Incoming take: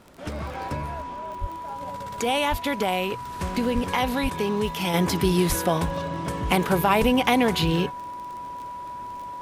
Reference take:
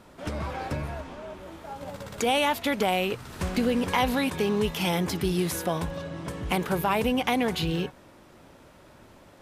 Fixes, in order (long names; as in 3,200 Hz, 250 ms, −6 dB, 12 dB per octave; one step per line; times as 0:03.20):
click removal
notch filter 980 Hz, Q 30
high-pass at the plosives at 0:01.40/0:02.50/0:03.74/0:04.22/0:05.48/0:07.00
level 0 dB, from 0:04.94 −5 dB